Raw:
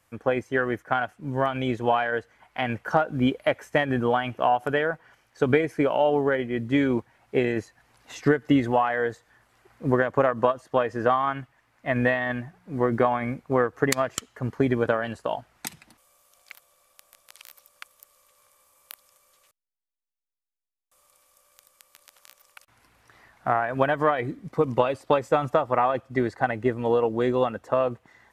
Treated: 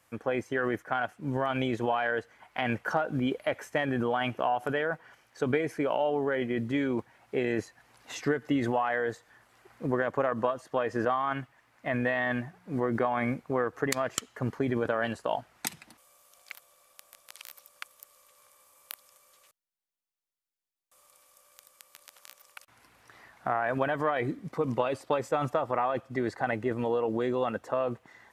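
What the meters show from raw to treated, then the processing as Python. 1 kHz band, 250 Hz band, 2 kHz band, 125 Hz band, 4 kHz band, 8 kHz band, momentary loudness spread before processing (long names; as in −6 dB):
−5.5 dB, −5.0 dB, −4.0 dB, −5.5 dB, −3.5 dB, −2.0 dB, 9 LU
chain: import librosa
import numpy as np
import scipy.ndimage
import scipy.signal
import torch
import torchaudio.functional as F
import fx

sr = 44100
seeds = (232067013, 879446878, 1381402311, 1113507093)

p1 = fx.low_shelf(x, sr, hz=79.0, db=-11.0)
p2 = fx.over_compress(p1, sr, threshold_db=-29.0, ratio=-0.5)
p3 = p1 + (p2 * 10.0 ** (-2.0 / 20.0))
y = p3 * 10.0 ** (-7.0 / 20.0)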